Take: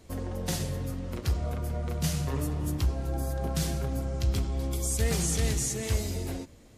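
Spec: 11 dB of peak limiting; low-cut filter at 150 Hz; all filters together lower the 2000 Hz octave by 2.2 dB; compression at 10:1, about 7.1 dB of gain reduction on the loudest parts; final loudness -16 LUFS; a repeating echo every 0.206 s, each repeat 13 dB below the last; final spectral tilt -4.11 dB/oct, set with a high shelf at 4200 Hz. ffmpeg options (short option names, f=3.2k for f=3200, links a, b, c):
-af "highpass=150,equalizer=f=2k:t=o:g=-4,highshelf=f=4.2k:g=6,acompressor=threshold=-31dB:ratio=10,alimiter=level_in=5dB:limit=-24dB:level=0:latency=1,volume=-5dB,aecho=1:1:206|412|618:0.224|0.0493|0.0108,volume=22dB"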